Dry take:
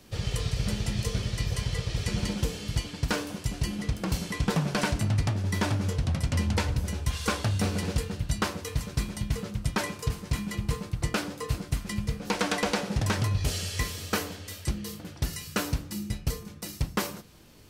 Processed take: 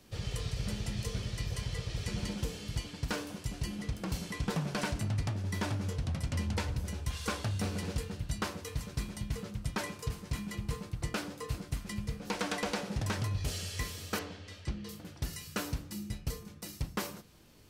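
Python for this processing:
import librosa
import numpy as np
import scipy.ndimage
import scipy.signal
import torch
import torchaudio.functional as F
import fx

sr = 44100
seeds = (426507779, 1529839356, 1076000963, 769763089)

p1 = fx.lowpass(x, sr, hz=4600.0, slope=12, at=(14.19, 14.89))
p2 = 10.0 ** (-29.5 / 20.0) * np.tanh(p1 / 10.0 ** (-29.5 / 20.0))
p3 = p1 + (p2 * librosa.db_to_amplitude(-10.0))
y = p3 * librosa.db_to_amplitude(-8.0)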